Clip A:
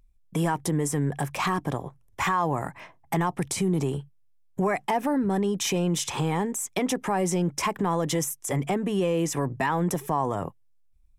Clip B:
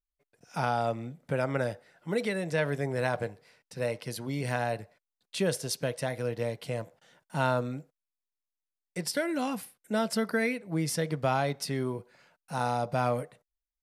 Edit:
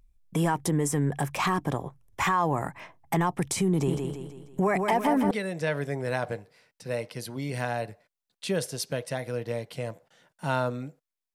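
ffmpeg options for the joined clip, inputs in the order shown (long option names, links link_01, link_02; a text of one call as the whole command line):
ffmpeg -i cue0.wav -i cue1.wav -filter_complex "[0:a]asettb=1/sr,asplit=3[link_01][link_02][link_03];[link_01]atrim=end=3.714[link_04];[link_02]atrim=start=3.71:end=5.31,asetpts=PTS-STARTPTS,afade=type=in:duration=0.004:curve=qsin,afade=type=out:start_time=1.596:duration=0.004:curve=qsin,aecho=1:1:163|326|489|652|815|978:0.596|0.274|0.126|0.058|0.0267|0.0123,atrim=end_sample=70560[link_05];[link_03]atrim=start=5.306[link_06];[link_04][link_05]acrossfade=duration=0.004:curve1=hsin:curve2=qsin[link_07];[link_07][link_06]acrossfade=duration=0.004:curve1=qsin:curve2=hsin,apad=whole_dur=11.34,atrim=end=11.34,atrim=end=5.312[link_08];[1:a]atrim=start=2.218:end=8.25[link_09];[link_08][link_09]acrossfade=duration=0.004:curve1=hsin:curve2=hsin" out.wav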